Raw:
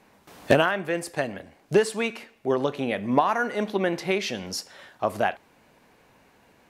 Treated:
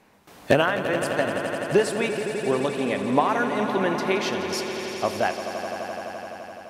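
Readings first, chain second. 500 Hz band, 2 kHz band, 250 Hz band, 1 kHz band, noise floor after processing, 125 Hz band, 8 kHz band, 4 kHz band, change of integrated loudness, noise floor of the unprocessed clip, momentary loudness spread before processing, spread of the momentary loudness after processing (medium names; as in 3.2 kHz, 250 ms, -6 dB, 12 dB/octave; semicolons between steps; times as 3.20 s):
+2.0 dB, +2.0 dB, +2.0 dB, +2.0 dB, -48 dBFS, +1.0 dB, +2.0 dB, +2.0 dB, +1.0 dB, -60 dBFS, 12 LU, 10 LU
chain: echo with a slow build-up 85 ms, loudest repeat 5, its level -12 dB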